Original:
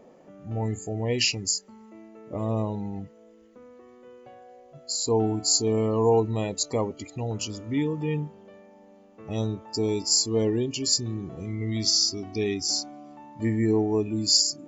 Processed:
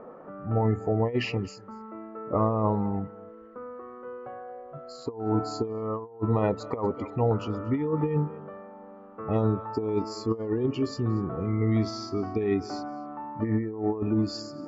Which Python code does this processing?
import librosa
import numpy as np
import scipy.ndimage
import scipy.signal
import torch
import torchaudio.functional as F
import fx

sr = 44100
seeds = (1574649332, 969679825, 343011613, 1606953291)

y = fx.lowpass_res(x, sr, hz=1300.0, q=5.0)
y = fx.peak_eq(y, sr, hz=470.0, db=5.0, octaves=0.21)
y = y + 10.0 ** (-23.0 / 20.0) * np.pad(y, (int(236 * sr / 1000.0), 0))[:len(y)]
y = fx.over_compress(y, sr, threshold_db=-26.0, ratio=-0.5)
y = y * librosa.db_to_amplitude(1.0)